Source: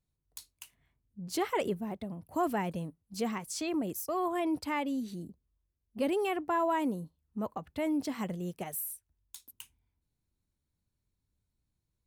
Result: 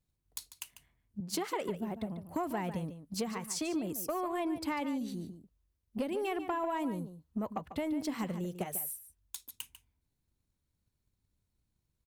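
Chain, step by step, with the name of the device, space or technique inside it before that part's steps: drum-bus smash (transient shaper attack +7 dB, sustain +2 dB; compressor 6:1, threshold -30 dBFS, peak gain reduction 9.5 dB; soft clip -25 dBFS, distortion -21 dB); 1.2–1.69 HPF 170 Hz 12 dB/oct; outdoor echo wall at 25 m, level -11 dB

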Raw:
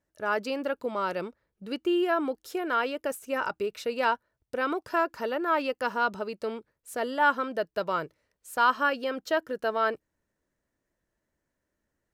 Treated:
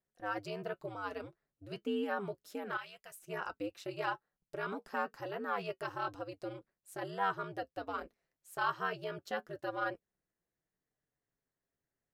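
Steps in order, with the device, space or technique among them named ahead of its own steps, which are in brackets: alien voice (ring modulator 100 Hz; flange 0.3 Hz, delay 5.3 ms, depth 2.3 ms, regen -54%); 2.77–3.17 passive tone stack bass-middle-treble 10-0-10; gain -3.5 dB

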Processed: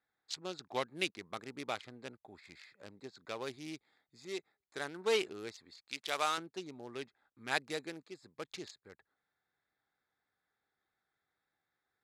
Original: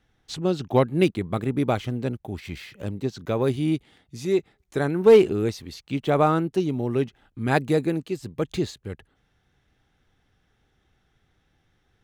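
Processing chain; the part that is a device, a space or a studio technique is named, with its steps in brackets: Wiener smoothing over 15 samples; 5.88–6.38 tilt +3 dB/oct; piezo pickup straight into a mixer (LPF 6100 Hz 12 dB/oct; differentiator); gain +5.5 dB

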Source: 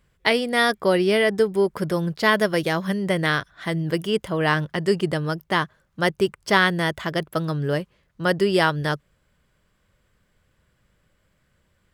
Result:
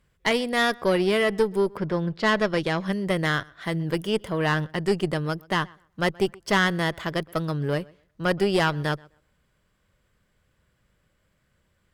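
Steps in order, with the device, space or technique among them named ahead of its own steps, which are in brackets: 1.76–2.91 LPF 3100 Hz -> 8200 Hz 12 dB/oct; rockabilly slapback (tube stage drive 11 dB, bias 0.55; tape echo 0.126 s, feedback 22%, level -24 dB, low-pass 3000 Hz)

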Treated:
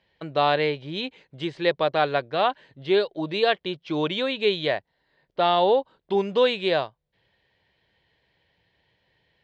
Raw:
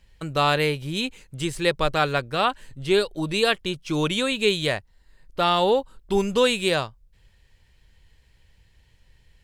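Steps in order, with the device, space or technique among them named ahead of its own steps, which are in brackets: kitchen radio (speaker cabinet 200–3900 Hz, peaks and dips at 230 Hz -5 dB, 670 Hz +5 dB, 1300 Hz -6 dB, 2600 Hz -5 dB)

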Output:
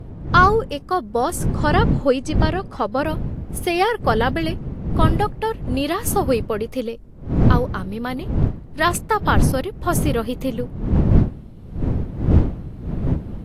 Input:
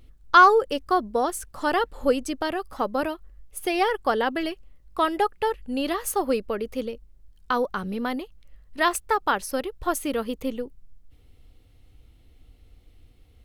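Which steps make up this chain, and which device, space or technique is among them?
1.54–3.06 LPF 7300 Hz 12 dB/oct; smartphone video outdoors (wind noise 160 Hz -24 dBFS; AGC gain up to 5 dB; AAC 64 kbps 32000 Hz)

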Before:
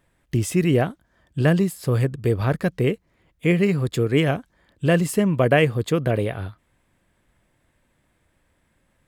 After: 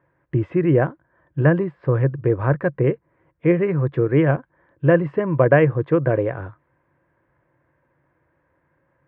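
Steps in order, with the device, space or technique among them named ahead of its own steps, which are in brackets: bass cabinet (speaker cabinet 72–2100 Hz, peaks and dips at 140 Hz +9 dB, 210 Hz -8 dB, 330 Hz +8 dB, 530 Hz +8 dB, 1000 Hz +9 dB, 1600 Hz +6 dB); gain -2.5 dB

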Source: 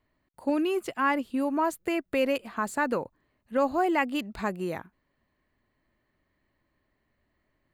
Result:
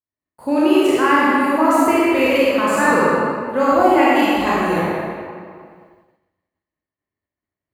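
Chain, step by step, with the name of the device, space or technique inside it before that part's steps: spectral trails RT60 0.73 s; HPF 66 Hz; stairwell (reverb RT60 2.2 s, pre-delay 29 ms, DRR -6.5 dB); expander -49 dBFS; 3.82–4.47 bell 1600 Hz -5.5 dB 0.77 oct; gain +4 dB

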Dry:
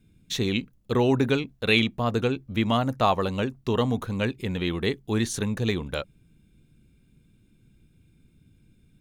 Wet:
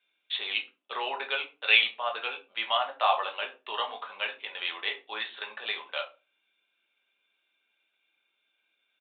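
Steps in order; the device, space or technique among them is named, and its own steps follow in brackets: shoebox room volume 120 m³, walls furnished, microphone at 1.2 m; musical greeting card (downsampling 8000 Hz; HPF 710 Hz 24 dB/oct; bell 3000 Hz +4.5 dB 0.59 oct); gain -2.5 dB

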